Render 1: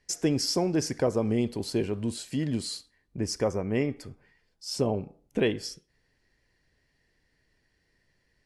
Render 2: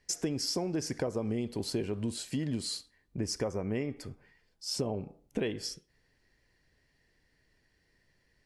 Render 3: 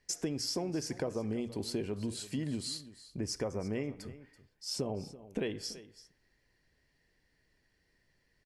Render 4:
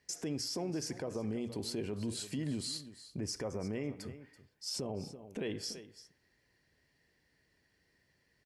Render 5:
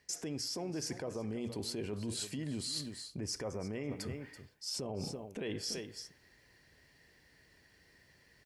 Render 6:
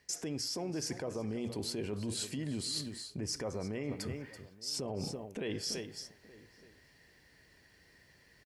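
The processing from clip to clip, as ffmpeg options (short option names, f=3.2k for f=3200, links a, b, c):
-af "acompressor=threshold=-29dB:ratio=6"
-af "bandreject=f=60:t=h:w=6,bandreject=f=120:t=h:w=6,aecho=1:1:333:0.15,volume=-2.5dB"
-af "highpass=66,alimiter=level_in=6dB:limit=-24dB:level=0:latency=1:release=44,volume=-6dB,volume=1dB"
-af "equalizer=f=230:t=o:w=2.3:g=-2.5,areverse,acompressor=threshold=-46dB:ratio=6,areverse,volume=9.5dB"
-filter_complex "[0:a]asplit=2[a][b];[b]adelay=874.6,volume=-20dB,highshelf=f=4k:g=-19.7[c];[a][c]amix=inputs=2:normalize=0,volume=1.5dB"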